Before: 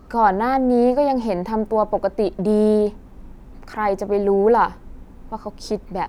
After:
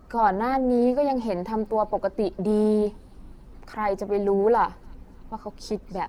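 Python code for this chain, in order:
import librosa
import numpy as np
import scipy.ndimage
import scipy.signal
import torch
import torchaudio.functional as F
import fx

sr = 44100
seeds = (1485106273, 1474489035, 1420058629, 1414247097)

y = fx.spec_quant(x, sr, step_db=15)
y = fx.echo_wet_highpass(y, sr, ms=285, feedback_pct=61, hz=3400.0, wet_db=-18)
y = F.gain(torch.from_numpy(y), -4.5).numpy()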